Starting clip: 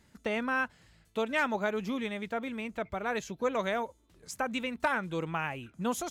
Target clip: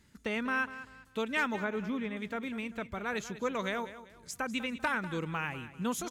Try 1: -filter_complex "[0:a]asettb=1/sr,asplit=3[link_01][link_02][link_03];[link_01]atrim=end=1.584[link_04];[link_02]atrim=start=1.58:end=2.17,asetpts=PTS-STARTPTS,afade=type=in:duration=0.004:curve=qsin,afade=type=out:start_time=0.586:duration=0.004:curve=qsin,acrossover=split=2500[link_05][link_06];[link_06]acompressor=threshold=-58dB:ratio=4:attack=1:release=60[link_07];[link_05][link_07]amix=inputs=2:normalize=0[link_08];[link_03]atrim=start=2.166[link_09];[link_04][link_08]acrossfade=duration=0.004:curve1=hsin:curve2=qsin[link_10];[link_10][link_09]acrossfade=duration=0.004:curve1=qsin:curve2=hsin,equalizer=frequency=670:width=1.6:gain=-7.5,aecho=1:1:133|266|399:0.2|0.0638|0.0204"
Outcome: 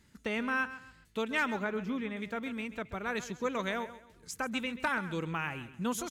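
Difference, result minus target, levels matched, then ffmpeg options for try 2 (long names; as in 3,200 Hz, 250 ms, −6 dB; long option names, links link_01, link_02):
echo 62 ms early
-filter_complex "[0:a]asettb=1/sr,asplit=3[link_01][link_02][link_03];[link_01]atrim=end=1.584[link_04];[link_02]atrim=start=1.58:end=2.17,asetpts=PTS-STARTPTS,afade=type=in:duration=0.004:curve=qsin,afade=type=out:start_time=0.586:duration=0.004:curve=qsin,acrossover=split=2500[link_05][link_06];[link_06]acompressor=threshold=-58dB:ratio=4:attack=1:release=60[link_07];[link_05][link_07]amix=inputs=2:normalize=0[link_08];[link_03]atrim=start=2.166[link_09];[link_04][link_08]acrossfade=duration=0.004:curve1=hsin:curve2=qsin[link_10];[link_10][link_09]acrossfade=duration=0.004:curve1=qsin:curve2=hsin,equalizer=frequency=670:width=1.6:gain=-7.5,aecho=1:1:195|390|585:0.2|0.0638|0.0204"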